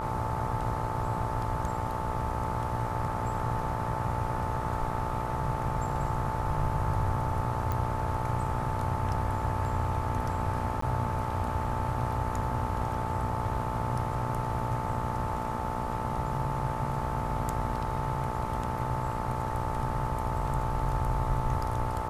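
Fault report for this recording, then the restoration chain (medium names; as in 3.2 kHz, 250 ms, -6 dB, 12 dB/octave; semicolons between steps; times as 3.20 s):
buzz 60 Hz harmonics 22 -36 dBFS
whine 880 Hz -35 dBFS
7.72 s: pop -19 dBFS
10.81–10.82 s: dropout 14 ms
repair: de-click; de-hum 60 Hz, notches 22; band-stop 880 Hz, Q 30; interpolate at 10.81 s, 14 ms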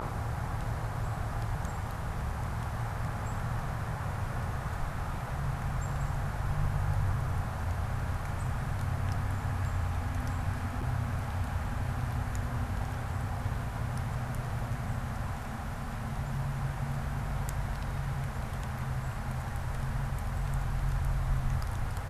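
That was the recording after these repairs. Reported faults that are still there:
nothing left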